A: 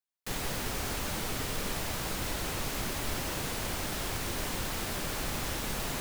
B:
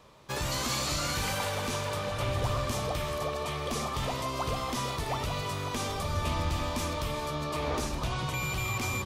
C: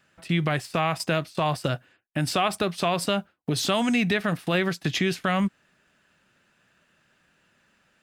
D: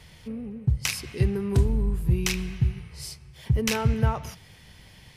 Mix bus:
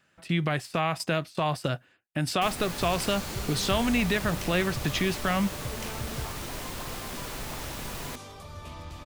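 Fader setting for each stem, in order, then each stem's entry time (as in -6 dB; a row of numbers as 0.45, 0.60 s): -3.0, -11.5, -2.5, -14.5 dB; 2.15, 2.40, 0.00, 2.15 s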